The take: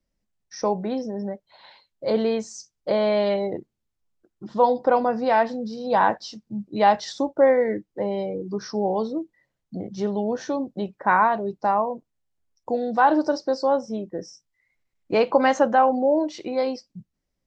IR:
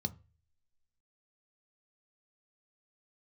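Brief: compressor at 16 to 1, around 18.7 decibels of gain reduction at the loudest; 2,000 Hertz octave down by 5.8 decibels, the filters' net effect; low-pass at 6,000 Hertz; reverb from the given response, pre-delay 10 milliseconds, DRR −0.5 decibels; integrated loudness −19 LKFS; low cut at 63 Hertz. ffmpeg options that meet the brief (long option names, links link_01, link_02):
-filter_complex "[0:a]highpass=63,lowpass=6000,equalizer=frequency=2000:width_type=o:gain=-8.5,acompressor=threshold=-32dB:ratio=16,asplit=2[link_01][link_02];[1:a]atrim=start_sample=2205,adelay=10[link_03];[link_02][link_03]afir=irnorm=-1:irlink=0,volume=0.5dB[link_04];[link_01][link_04]amix=inputs=2:normalize=0,volume=12dB"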